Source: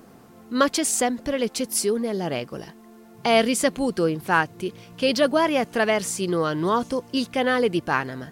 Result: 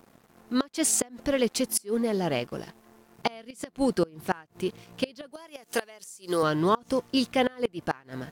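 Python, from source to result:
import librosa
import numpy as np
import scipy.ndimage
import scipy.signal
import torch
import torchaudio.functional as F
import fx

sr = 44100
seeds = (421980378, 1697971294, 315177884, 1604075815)

y = fx.bass_treble(x, sr, bass_db=-11, treble_db=12, at=(5.32, 6.43))
y = np.sign(y) * np.maximum(np.abs(y) - 10.0 ** (-48.5 / 20.0), 0.0)
y = fx.gate_flip(y, sr, shuts_db=-12.0, range_db=-27)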